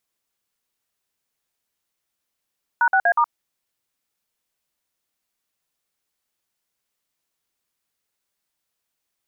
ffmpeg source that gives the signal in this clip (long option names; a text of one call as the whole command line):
ffmpeg -f lavfi -i "aevalsrc='0.15*clip(min(mod(t,0.121),0.069-mod(t,0.121))/0.002,0,1)*(eq(floor(t/0.121),0)*(sin(2*PI*941*mod(t,0.121))+sin(2*PI*1477*mod(t,0.121)))+eq(floor(t/0.121),1)*(sin(2*PI*770*mod(t,0.121))+sin(2*PI*1477*mod(t,0.121)))+eq(floor(t/0.121),2)*(sin(2*PI*697*mod(t,0.121))+sin(2*PI*1633*mod(t,0.121)))+eq(floor(t/0.121),3)*(sin(2*PI*941*mod(t,0.121))+sin(2*PI*1209*mod(t,0.121))))':duration=0.484:sample_rate=44100" out.wav